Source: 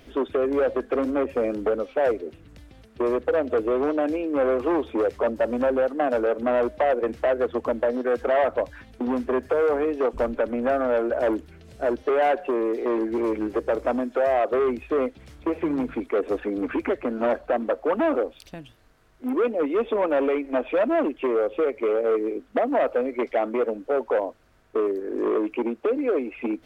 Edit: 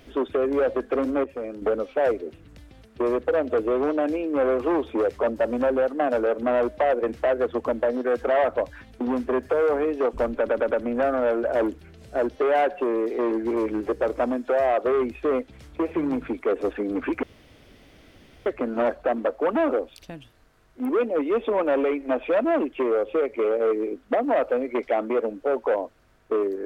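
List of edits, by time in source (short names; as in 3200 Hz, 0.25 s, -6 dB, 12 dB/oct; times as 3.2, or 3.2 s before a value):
1.24–1.62 gain -8 dB
10.38 stutter 0.11 s, 4 plays
16.9 insert room tone 1.23 s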